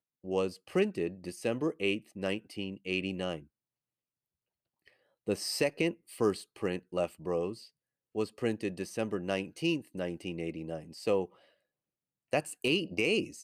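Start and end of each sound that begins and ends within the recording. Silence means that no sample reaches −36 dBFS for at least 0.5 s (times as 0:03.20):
0:05.28–0:07.53
0:08.16–0:11.25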